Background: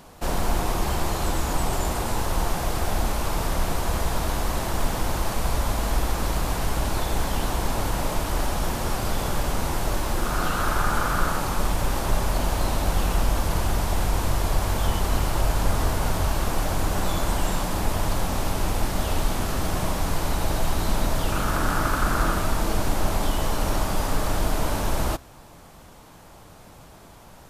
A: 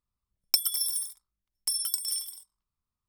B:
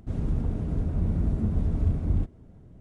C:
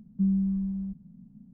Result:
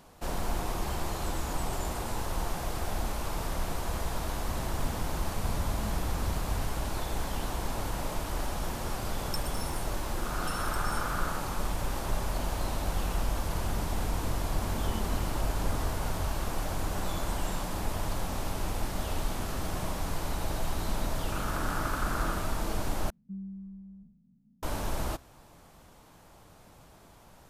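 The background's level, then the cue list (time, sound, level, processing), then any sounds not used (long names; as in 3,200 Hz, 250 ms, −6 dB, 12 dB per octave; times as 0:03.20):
background −8 dB
0:04.41: mix in B −11.5 dB
0:08.80: mix in A −14 dB + low-pass filter 11,000 Hz
0:13.54: mix in B −4 dB + high-pass filter 280 Hz
0:23.10: overwrite with C −15.5 dB + peak hold with a decay on every bin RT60 0.62 s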